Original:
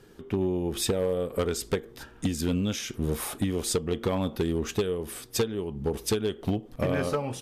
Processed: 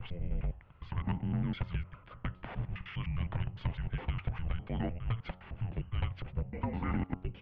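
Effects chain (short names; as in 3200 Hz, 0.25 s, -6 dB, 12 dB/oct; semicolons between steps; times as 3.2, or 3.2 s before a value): slices in reverse order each 0.102 s, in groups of 8; mistuned SSB -340 Hz 200–3000 Hz; de-hum 91.23 Hz, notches 15; gain -4.5 dB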